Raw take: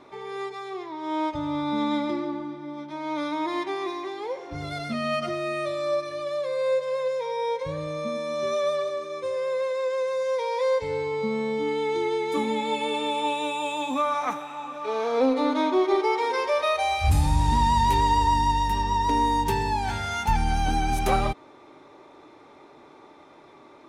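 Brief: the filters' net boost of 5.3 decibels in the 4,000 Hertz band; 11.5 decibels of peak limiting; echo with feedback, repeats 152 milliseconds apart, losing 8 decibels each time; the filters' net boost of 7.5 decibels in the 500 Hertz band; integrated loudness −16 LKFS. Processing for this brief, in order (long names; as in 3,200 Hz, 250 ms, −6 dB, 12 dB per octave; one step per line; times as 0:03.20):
parametric band 500 Hz +8.5 dB
parametric band 4,000 Hz +6 dB
brickwall limiter −16.5 dBFS
repeating echo 152 ms, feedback 40%, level −8 dB
level +7.5 dB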